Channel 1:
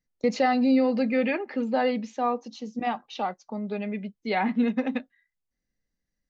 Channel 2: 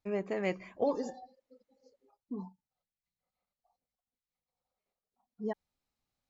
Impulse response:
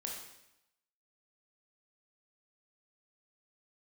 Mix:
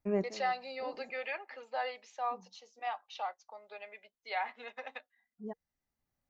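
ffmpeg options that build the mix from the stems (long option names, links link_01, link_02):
-filter_complex "[0:a]highpass=frequency=640:width=0.5412,highpass=frequency=640:width=1.3066,volume=-7.5dB,asplit=2[link_01][link_02];[1:a]equalizer=frequency=4600:width=0.73:gain=-13,bandreject=frequency=470:width=12,volume=2dB[link_03];[link_02]apad=whole_len=277798[link_04];[link_03][link_04]sidechaincompress=threshold=-54dB:ratio=6:attack=16:release=1060[link_05];[link_01][link_05]amix=inputs=2:normalize=0,lowshelf=frequency=320:gain=3"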